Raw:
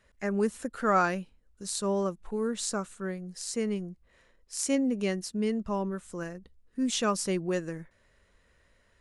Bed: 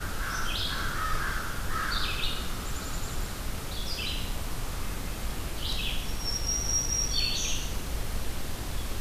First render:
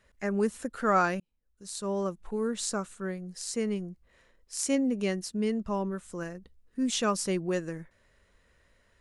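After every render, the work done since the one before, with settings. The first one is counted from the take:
0:01.20–0:02.19: fade in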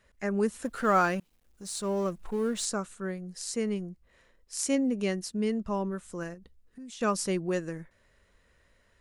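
0:00.64–0:02.65: mu-law and A-law mismatch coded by mu
0:06.34–0:07.01: downward compressor 5 to 1, threshold −44 dBFS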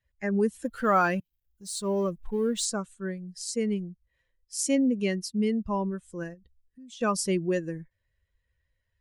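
spectral dynamics exaggerated over time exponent 1.5
in parallel at −1 dB: brickwall limiter −25 dBFS, peak gain reduction 11 dB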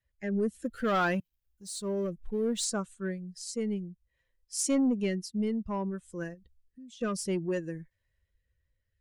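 soft clipping −19.5 dBFS, distortion −17 dB
rotating-speaker cabinet horn 0.6 Hz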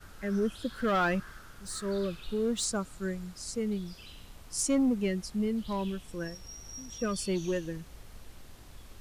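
mix in bed −17 dB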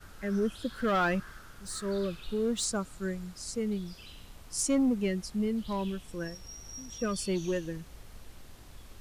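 no processing that can be heard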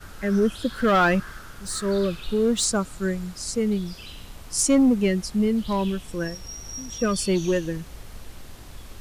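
level +8.5 dB

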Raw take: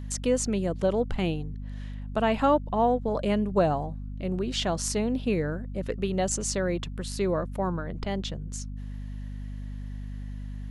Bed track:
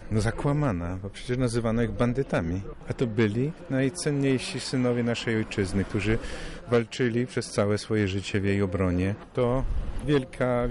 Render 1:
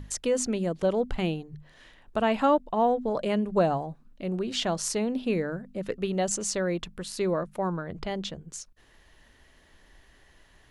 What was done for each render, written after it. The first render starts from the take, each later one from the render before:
mains-hum notches 50/100/150/200/250 Hz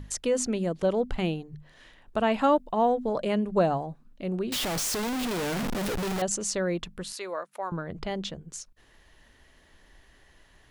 0:02.43–0:03.11: high-shelf EQ 6,100 Hz +5.5 dB
0:04.52–0:06.22: sign of each sample alone
0:07.13–0:07.72: high-pass filter 710 Hz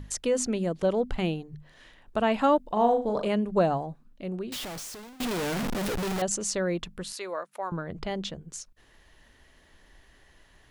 0:02.61–0:03.28: flutter between parallel walls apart 6.6 metres, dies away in 0.32 s
0:03.87–0:05.20: fade out, to −23.5 dB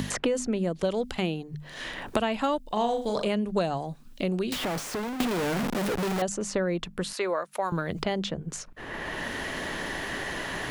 multiband upward and downward compressor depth 100%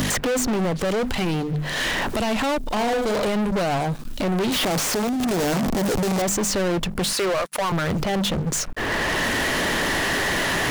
brickwall limiter −19.5 dBFS, peak gain reduction 9.5 dB
leveller curve on the samples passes 5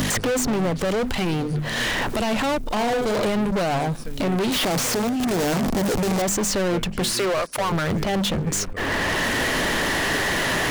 mix in bed track −11 dB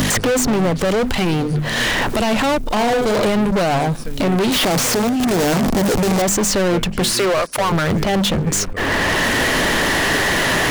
level +5.5 dB

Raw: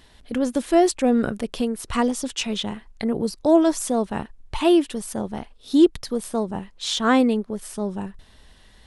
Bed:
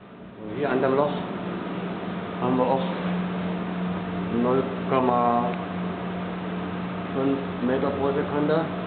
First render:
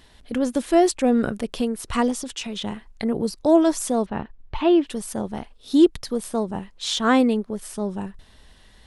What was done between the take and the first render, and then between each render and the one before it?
0:02.15–0:02.62: downward compressor 4 to 1, threshold −27 dBFS
0:04.06–0:04.87: high-frequency loss of the air 230 metres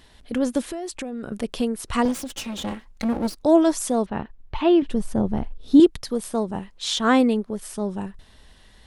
0:00.63–0:01.32: downward compressor 16 to 1, threshold −27 dBFS
0:02.05–0:03.43: lower of the sound and its delayed copy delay 3.7 ms
0:04.82–0:05.80: spectral tilt −3 dB per octave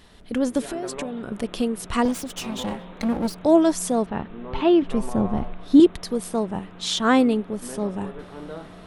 mix in bed −14 dB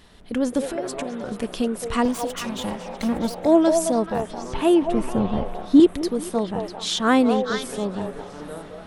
on a send: echo through a band-pass that steps 216 ms, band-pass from 630 Hz, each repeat 1.4 octaves, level −2 dB
on the sum: feedback echo with a swinging delay time 435 ms, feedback 51%, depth 63 cents, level −22.5 dB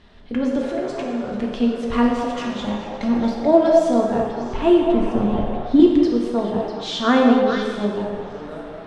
high-frequency loss of the air 150 metres
reverb whose tail is shaped and stops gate 450 ms falling, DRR −0.5 dB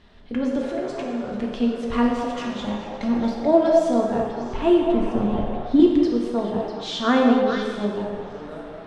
level −2.5 dB

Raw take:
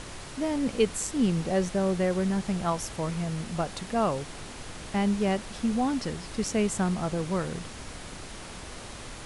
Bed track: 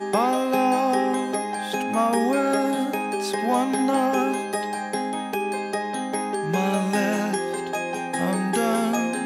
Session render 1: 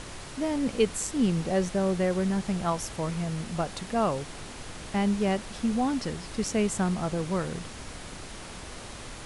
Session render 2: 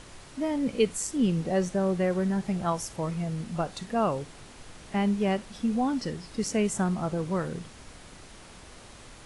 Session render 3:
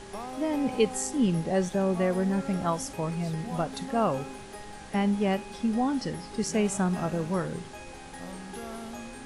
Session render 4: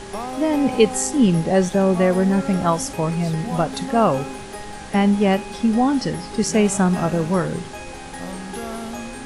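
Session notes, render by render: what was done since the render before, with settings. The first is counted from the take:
no processing that can be heard
noise reduction from a noise print 7 dB
mix in bed track −17.5 dB
level +9 dB

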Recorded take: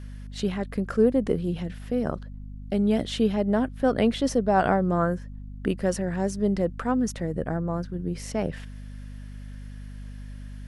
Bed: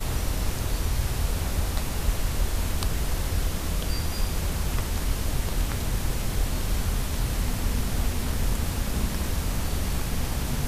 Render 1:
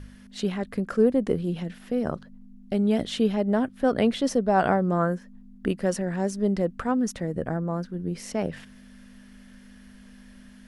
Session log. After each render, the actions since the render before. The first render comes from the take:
hum removal 50 Hz, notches 3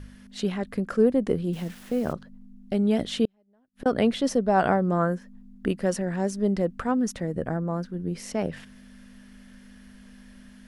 0:01.53–0:02.13: bit-depth reduction 8 bits, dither none
0:03.25–0:03.86: gate with flip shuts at −23 dBFS, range −41 dB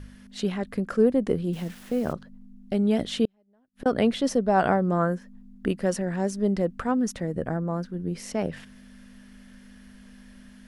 no processing that can be heard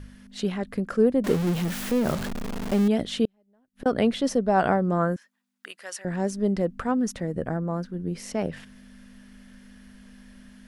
0:01.24–0:02.88: converter with a step at zero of −25.5 dBFS
0:05.16–0:06.05: high-pass filter 1,400 Hz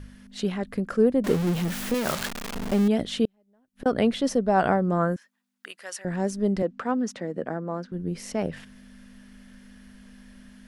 0:01.94–0:02.55: tilt shelving filter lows −7.5 dB, about 700 Hz
0:06.62–0:07.92: three-way crossover with the lows and the highs turned down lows −24 dB, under 180 Hz, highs −16 dB, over 7,300 Hz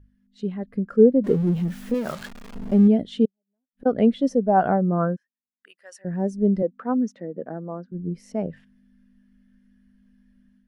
automatic gain control gain up to 5 dB
every bin expanded away from the loudest bin 1.5 to 1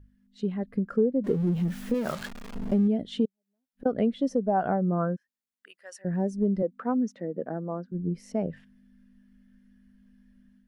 downward compressor 3 to 1, threshold −23 dBFS, peak gain reduction 11 dB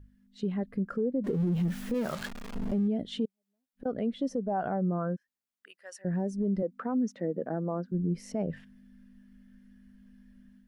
speech leveller within 4 dB 2 s
brickwall limiter −22 dBFS, peak gain reduction 9 dB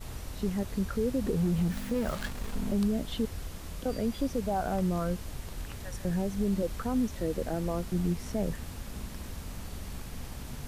mix in bed −13 dB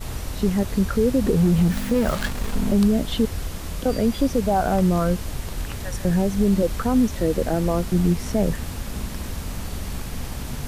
level +10 dB

